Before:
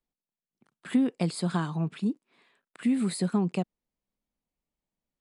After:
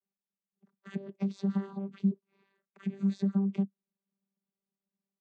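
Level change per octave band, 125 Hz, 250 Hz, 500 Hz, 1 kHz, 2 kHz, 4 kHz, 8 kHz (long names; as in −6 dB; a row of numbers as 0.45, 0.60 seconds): −3.5 dB, −3.5 dB, −6.5 dB, −13.0 dB, below −10 dB, below −15 dB, below −20 dB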